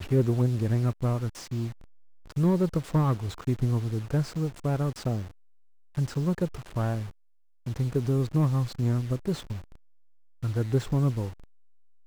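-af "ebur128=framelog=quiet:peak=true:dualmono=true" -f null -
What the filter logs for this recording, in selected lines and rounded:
Integrated loudness:
  I:         -25.3 LUFS
  Threshold: -35.9 LUFS
Loudness range:
  LRA:         3.6 LU
  Threshold: -46.3 LUFS
  LRA low:   -28.4 LUFS
  LRA high:  -24.8 LUFS
True peak:
  Peak:      -12.5 dBFS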